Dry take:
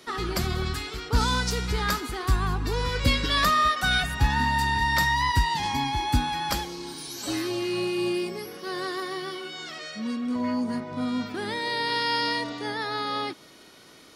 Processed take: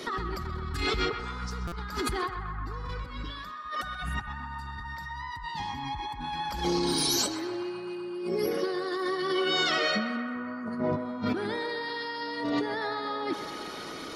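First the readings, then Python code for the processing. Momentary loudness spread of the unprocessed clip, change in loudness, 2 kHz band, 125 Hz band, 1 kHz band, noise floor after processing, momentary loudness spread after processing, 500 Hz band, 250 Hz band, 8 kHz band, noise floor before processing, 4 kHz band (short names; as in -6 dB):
12 LU, -5.0 dB, -6.0 dB, -9.0 dB, -6.5 dB, -40 dBFS, 12 LU, +0.5 dB, -3.0 dB, -1.0 dB, -51 dBFS, -4.0 dB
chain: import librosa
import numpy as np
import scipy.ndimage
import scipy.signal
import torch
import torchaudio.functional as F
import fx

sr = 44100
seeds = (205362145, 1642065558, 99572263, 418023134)

p1 = fx.envelope_sharpen(x, sr, power=1.5)
p2 = fx.peak_eq(p1, sr, hz=120.0, db=-3.5, octaves=0.43)
p3 = fx.over_compress(p2, sr, threshold_db=-37.0, ratio=-1.0)
p4 = p3 + fx.echo_banded(p3, sr, ms=128, feedback_pct=85, hz=1200.0, wet_db=-7, dry=0)
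p5 = fx.buffer_glitch(p4, sr, at_s=(1.67,), block=256, repeats=8)
y = p5 * 10.0 ** (3.0 / 20.0)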